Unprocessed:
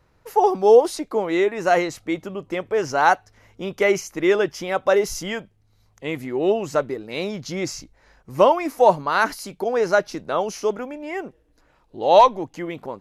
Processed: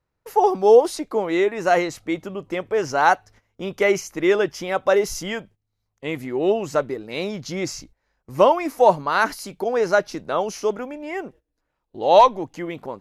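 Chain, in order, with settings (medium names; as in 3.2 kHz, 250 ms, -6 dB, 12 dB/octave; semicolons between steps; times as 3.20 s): gate -46 dBFS, range -17 dB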